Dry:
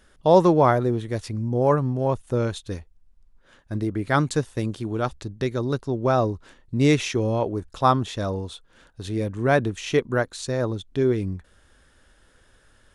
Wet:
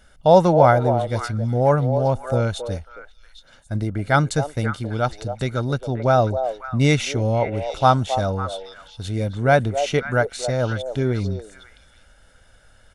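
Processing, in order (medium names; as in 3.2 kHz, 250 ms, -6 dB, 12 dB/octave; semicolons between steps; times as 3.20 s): comb 1.4 ms, depth 52%; on a send: repeats whose band climbs or falls 271 ms, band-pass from 580 Hz, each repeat 1.4 oct, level -5.5 dB; on the sum: trim +2 dB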